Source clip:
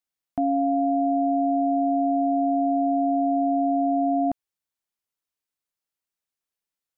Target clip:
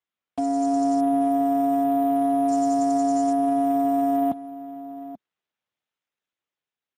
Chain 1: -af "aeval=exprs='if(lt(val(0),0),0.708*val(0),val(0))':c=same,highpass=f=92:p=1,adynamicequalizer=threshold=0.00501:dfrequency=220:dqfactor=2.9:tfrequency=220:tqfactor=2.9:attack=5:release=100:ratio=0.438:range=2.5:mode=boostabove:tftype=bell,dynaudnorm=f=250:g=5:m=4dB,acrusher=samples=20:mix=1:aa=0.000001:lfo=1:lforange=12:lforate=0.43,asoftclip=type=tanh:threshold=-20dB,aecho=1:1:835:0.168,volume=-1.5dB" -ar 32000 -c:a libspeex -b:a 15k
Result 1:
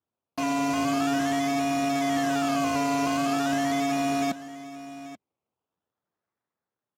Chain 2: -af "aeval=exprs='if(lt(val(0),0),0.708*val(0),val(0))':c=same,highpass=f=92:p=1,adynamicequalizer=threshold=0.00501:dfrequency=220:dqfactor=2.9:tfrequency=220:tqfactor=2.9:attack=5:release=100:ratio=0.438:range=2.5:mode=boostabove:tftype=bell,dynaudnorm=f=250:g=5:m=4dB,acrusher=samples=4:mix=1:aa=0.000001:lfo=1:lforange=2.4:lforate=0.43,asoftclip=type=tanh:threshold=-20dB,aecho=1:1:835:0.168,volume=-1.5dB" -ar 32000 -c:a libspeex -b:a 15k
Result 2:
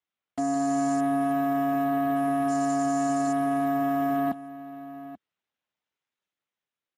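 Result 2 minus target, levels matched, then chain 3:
soft clip: distortion +14 dB
-af "aeval=exprs='if(lt(val(0),0),0.708*val(0),val(0))':c=same,highpass=f=92:p=1,adynamicequalizer=threshold=0.00501:dfrequency=220:dqfactor=2.9:tfrequency=220:tqfactor=2.9:attack=5:release=100:ratio=0.438:range=2.5:mode=boostabove:tftype=bell,dynaudnorm=f=250:g=5:m=4dB,acrusher=samples=4:mix=1:aa=0.000001:lfo=1:lforange=2.4:lforate=0.43,asoftclip=type=tanh:threshold=-10dB,aecho=1:1:835:0.168,volume=-1.5dB" -ar 32000 -c:a libspeex -b:a 15k

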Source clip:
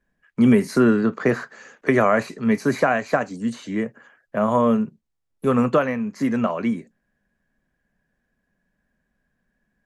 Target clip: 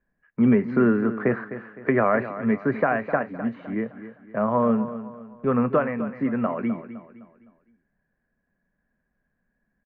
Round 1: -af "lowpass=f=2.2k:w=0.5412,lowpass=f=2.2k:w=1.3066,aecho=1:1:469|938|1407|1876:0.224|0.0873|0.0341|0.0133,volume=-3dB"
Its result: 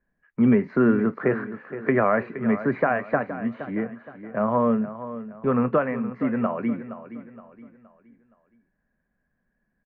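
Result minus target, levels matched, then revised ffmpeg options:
echo 0.213 s late
-af "lowpass=f=2.2k:w=0.5412,lowpass=f=2.2k:w=1.3066,aecho=1:1:256|512|768|1024:0.224|0.0873|0.0341|0.0133,volume=-3dB"

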